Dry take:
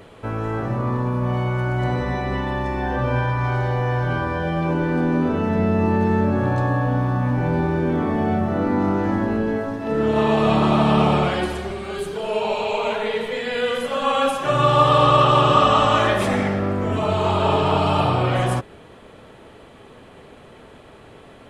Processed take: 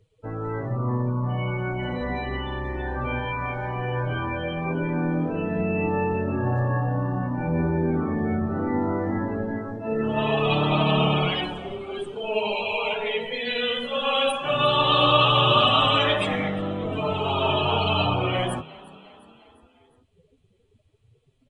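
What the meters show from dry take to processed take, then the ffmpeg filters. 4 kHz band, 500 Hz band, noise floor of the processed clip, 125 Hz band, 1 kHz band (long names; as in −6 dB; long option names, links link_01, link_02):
+4.5 dB, −4.5 dB, −63 dBFS, −5.0 dB, −5.0 dB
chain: -filter_complex "[0:a]afftdn=noise_reduction=30:noise_floor=-30,acrossover=split=110|920[link_01][link_02][link_03];[link_01]acompressor=mode=upward:threshold=-42dB:ratio=2.5[link_04];[link_04][link_02][link_03]amix=inputs=3:normalize=0,aexciter=amount=4.8:drive=3.6:freq=2300,flanger=delay=6.3:depth=6.7:regen=12:speed=0.18:shape=sinusoidal,asplit=2[link_05][link_06];[link_06]asplit=4[link_07][link_08][link_09][link_10];[link_07]adelay=354,afreqshift=34,volume=-21dB[link_11];[link_08]adelay=708,afreqshift=68,volume=-25.9dB[link_12];[link_09]adelay=1062,afreqshift=102,volume=-30.8dB[link_13];[link_10]adelay=1416,afreqshift=136,volume=-35.6dB[link_14];[link_11][link_12][link_13][link_14]amix=inputs=4:normalize=0[link_15];[link_05][link_15]amix=inputs=2:normalize=0,aresample=22050,aresample=44100,volume=-1.5dB"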